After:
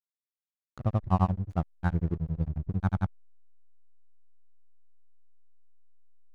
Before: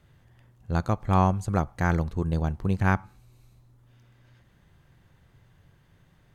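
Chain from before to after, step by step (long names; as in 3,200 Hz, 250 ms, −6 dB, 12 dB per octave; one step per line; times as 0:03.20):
expanding power law on the bin magnitudes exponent 1.6
granular cloud 100 ms, grains 11 per second, spray 100 ms
slack as between gear wheels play −35.5 dBFS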